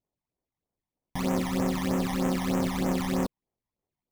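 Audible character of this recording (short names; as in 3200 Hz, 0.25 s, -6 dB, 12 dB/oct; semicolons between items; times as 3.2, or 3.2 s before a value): aliases and images of a low sample rate 1500 Hz, jitter 20%; phasing stages 12, 3.2 Hz, lowest notch 430–4400 Hz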